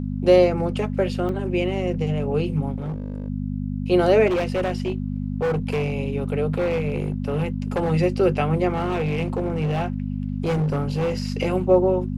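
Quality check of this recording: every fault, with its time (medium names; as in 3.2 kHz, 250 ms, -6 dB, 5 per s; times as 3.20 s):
hum 50 Hz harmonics 5 -27 dBFS
1.29 s: dropout 2.4 ms
2.76–3.28 s: clipped -24.5 dBFS
4.26–5.94 s: clipped -19 dBFS
6.58–7.92 s: clipped -18.5 dBFS
8.72–11.28 s: clipped -19 dBFS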